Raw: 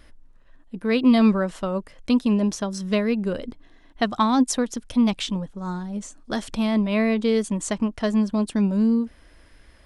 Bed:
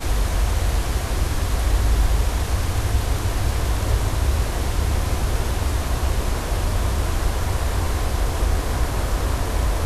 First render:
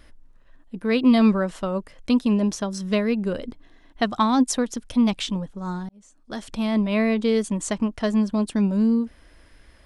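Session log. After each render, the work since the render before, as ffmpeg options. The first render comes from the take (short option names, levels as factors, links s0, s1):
-filter_complex "[0:a]asplit=2[s0][s1];[s0]atrim=end=5.89,asetpts=PTS-STARTPTS,afade=t=out:st=5.886:d=0.004:c=hsin[s2];[s1]atrim=start=5.89,asetpts=PTS-STARTPTS,afade=t=in:d=0.91[s3];[s2][s3]concat=n=2:v=0:a=1"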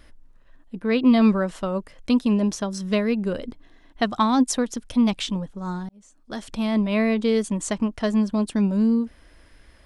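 -filter_complex "[0:a]asettb=1/sr,asplit=3[s0][s1][s2];[s0]atrim=end=0.794[s3];[s1]atrim=start=0.79:end=1.22,asetpts=PTS-STARTPTS,afade=t=in:d=0.004:c=qsin,afade=t=out:st=0.426:d=0.004:c=qsin,highshelf=f=7400:g=-11.5[s4];[s2]atrim=start=1.216[s5];[s3][s4]acrossfade=d=0.004:c1=hsin:c2=qsin[s6];[s6][s5]acrossfade=d=0.004:c1=qsin:c2=hsin"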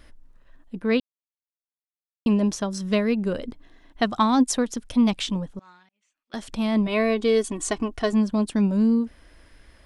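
-filter_complex "[0:a]asettb=1/sr,asplit=3[s0][s1][s2];[s0]atrim=end=5.594[s3];[s1]atrim=start=5.59:end=6.34,asetpts=PTS-STARTPTS,afade=t=in:d=0.004:c=qsin,afade=t=out:st=0.746:d=0.004:c=qsin,bandpass=f=2500:t=q:w=3.3[s4];[s2]atrim=start=6.336[s5];[s3][s4]acrossfade=d=0.004:c1=hsin:c2=qsin[s6];[s6][s5]acrossfade=d=0.004:c1=qsin:c2=hsin,asettb=1/sr,asplit=3[s7][s8][s9];[s7]atrim=end=6.874[s10];[s8]atrim=start=6.87:end=8.13,asetpts=PTS-STARTPTS,afade=t=in:d=0.004:c=qsin,afade=t=out:st=1.256:d=0.004:c=qsin,aecho=1:1:2.7:0.64,atrim=end_sample=55566[s11];[s9]atrim=start=8.126[s12];[s10][s11]acrossfade=d=0.004:c1=hsin:c2=qsin[s13];[s13][s12]acrossfade=d=0.004:c1=qsin:c2=hsin,asplit=3[s14][s15][s16];[s14]atrim=end=1,asetpts=PTS-STARTPTS,afade=t=out:st=0.996:d=0.004:c=hsin[s17];[s15]atrim=start=1:end=2.26,asetpts=PTS-STARTPTS,volume=0[s18];[s16]atrim=start=2.26,asetpts=PTS-STARTPTS,afade=t=in:d=0.004:c=hsin[s19];[s17][s18][s19]concat=n=3:v=0:a=1"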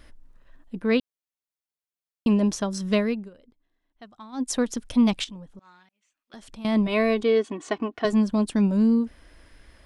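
-filter_complex "[0:a]asettb=1/sr,asplit=3[s0][s1][s2];[s0]atrim=end=5.244[s3];[s1]atrim=start=5.24:end=6.65,asetpts=PTS-STARTPTS,afade=t=in:d=0.004:c=qsin,afade=t=out:st=1.406:d=0.004:c=qsin,acompressor=threshold=0.00355:ratio=2:attack=3.2:release=140:knee=1:detection=peak[s4];[s2]atrim=start=6.646[s5];[s3][s4]acrossfade=d=0.004:c1=hsin:c2=qsin[s6];[s6][s5]acrossfade=d=0.004:c1=qsin:c2=hsin,asettb=1/sr,asplit=3[s7][s8][s9];[s7]atrim=end=7.234[s10];[s8]atrim=start=7.23:end=8.05,asetpts=PTS-STARTPTS,afade=t=in:d=0.004:c=qsin,afade=t=out:st=0.816:d=0.004:c=qsin,highpass=210,lowpass=3200[s11];[s9]atrim=start=8.046[s12];[s10][s11]acrossfade=d=0.004:c1=hsin:c2=qsin[s13];[s13][s12]acrossfade=d=0.004:c1=qsin:c2=hsin,asplit=3[s14][s15][s16];[s14]atrim=end=3.3,asetpts=PTS-STARTPTS,afade=t=out:st=3:d=0.3:silence=0.0668344[s17];[s15]atrim=start=3.3:end=4.32,asetpts=PTS-STARTPTS,volume=0.0668[s18];[s16]atrim=start=4.32,asetpts=PTS-STARTPTS,afade=t=in:d=0.3:silence=0.0668344[s19];[s17][s18][s19]concat=n=3:v=0:a=1"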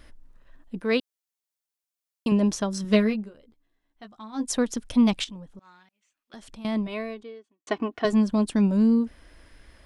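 -filter_complex "[0:a]asettb=1/sr,asplit=3[s0][s1][s2];[s0]atrim=end=0.804[s3];[s1]atrim=start=0.8:end=2.32,asetpts=PTS-STARTPTS,afade=t=in:d=0.004:c=qsin,afade=t=out:st=1.516:d=0.004:c=qsin,bass=f=250:g=-8,treble=f=4000:g=5[s4];[s2]atrim=start=2.316[s5];[s3][s4]acrossfade=d=0.004:c1=hsin:c2=qsin[s6];[s6][s5]acrossfade=d=0.004:c1=qsin:c2=hsin,asettb=1/sr,asplit=3[s7][s8][s9];[s7]atrim=end=2.834[s10];[s8]atrim=start=2.83:end=4.52,asetpts=PTS-STARTPTS,afade=t=in:d=0.004:c=qsin,afade=t=out:st=1.686:d=0.004:c=qsin,asplit=2[s11][s12];[s12]adelay=14,volume=0.562[s13];[s11][s13]amix=inputs=2:normalize=0,atrim=end_sample=74529[s14];[s9]atrim=start=4.516[s15];[s10][s14]acrossfade=d=0.004:c1=hsin:c2=qsin[s16];[s16][s15]acrossfade=d=0.004:c1=qsin:c2=hsin,asplit=2[s17][s18];[s17]atrim=end=7.67,asetpts=PTS-STARTPTS,afade=t=out:st=6.47:d=1.2:c=qua[s19];[s18]atrim=start=7.67,asetpts=PTS-STARTPTS,afade=t=in:d=0.004:c=hsin[s20];[s19][s20]concat=n=2:v=0:a=1"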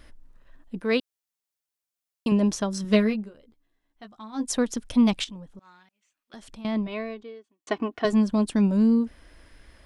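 -filter_complex "[0:a]asettb=1/sr,asplit=3[s0][s1][s2];[s0]atrim=end=6.614[s3];[s1]atrim=start=6.61:end=7.28,asetpts=PTS-STARTPTS,afade=t=in:d=0.004:c=qsin,afade=t=out:st=0.666:d=0.004:c=qsin,equalizer=f=9500:w=1.5:g=-14[s4];[s2]atrim=start=7.276[s5];[s3][s4]acrossfade=d=0.004:c1=hsin:c2=qsin[s6];[s6][s5]acrossfade=d=0.004:c1=qsin:c2=hsin"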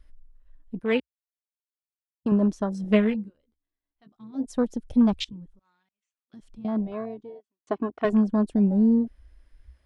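-af "afwtdn=0.0251,equalizer=f=64:t=o:w=0.6:g=9"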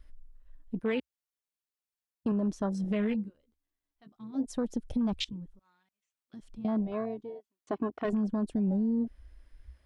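-af "alimiter=limit=0.1:level=0:latency=1:release=17,acompressor=threshold=0.0398:ratio=2"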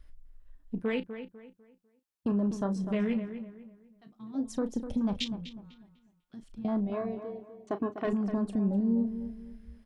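-filter_complex "[0:a]asplit=2[s0][s1];[s1]adelay=35,volume=0.251[s2];[s0][s2]amix=inputs=2:normalize=0,asplit=2[s3][s4];[s4]adelay=249,lowpass=f=2600:p=1,volume=0.316,asplit=2[s5][s6];[s6]adelay=249,lowpass=f=2600:p=1,volume=0.33,asplit=2[s7][s8];[s8]adelay=249,lowpass=f=2600:p=1,volume=0.33,asplit=2[s9][s10];[s10]adelay=249,lowpass=f=2600:p=1,volume=0.33[s11];[s3][s5][s7][s9][s11]amix=inputs=5:normalize=0"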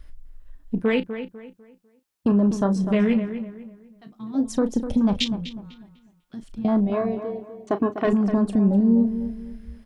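-af "volume=2.99"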